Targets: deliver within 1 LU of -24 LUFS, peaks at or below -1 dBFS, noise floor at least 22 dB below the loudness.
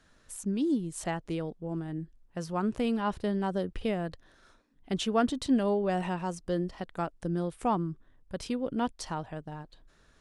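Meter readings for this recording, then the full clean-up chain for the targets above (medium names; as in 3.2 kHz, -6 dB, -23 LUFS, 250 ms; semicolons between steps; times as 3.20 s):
loudness -32.0 LUFS; peak level -15.0 dBFS; loudness target -24.0 LUFS
-> trim +8 dB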